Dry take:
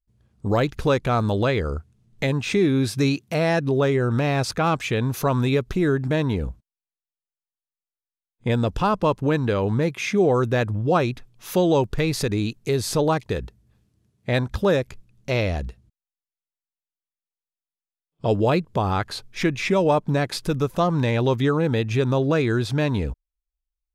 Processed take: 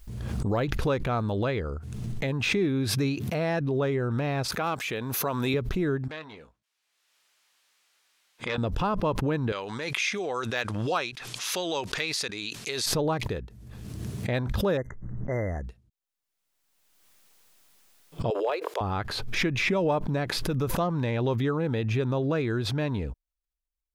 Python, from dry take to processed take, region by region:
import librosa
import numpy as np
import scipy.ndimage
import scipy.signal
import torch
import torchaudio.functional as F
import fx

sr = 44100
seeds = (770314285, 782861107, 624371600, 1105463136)

y = fx.chain(x, sr, fx.highpass(hz=340.0, slope=6),
    fx.high_shelf(hz=6500.0, db=10.5), at=(4.48, 5.54))
y = fx.chain(y, sr, fx.bandpass_q(hz=2500.0, q=0.58),
    fx.doubler(ms=19.0, db=-10.0),
    fx.transformer_sat(knee_hz=1600.0), at=(6.08, 8.58))
y = fx.chain(y, sr, fx.weighting(curve='ITU-R 468'),
    fx.clip_hard(threshold_db=-8.0), at=(9.52, 12.86))
y = fx.chain(y, sr, fx.env_lowpass(base_hz=980.0, full_db=-19.0),
    fx.brickwall_bandstop(low_hz=2100.0, high_hz=5800.0),
    fx.peak_eq(hz=3700.0, db=9.0, octaves=1.1), at=(14.77, 15.65))
y = fx.chain(y, sr, fx.steep_highpass(hz=400.0, slope=48),
    fx.clip_hard(threshold_db=-13.0), at=(18.3, 18.81))
y = fx.dynamic_eq(y, sr, hz=8000.0, q=0.74, threshold_db=-49.0, ratio=4.0, max_db=-8)
y = fx.pre_swell(y, sr, db_per_s=29.0)
y = y * 10.0 ** (-6.5 / 20.0)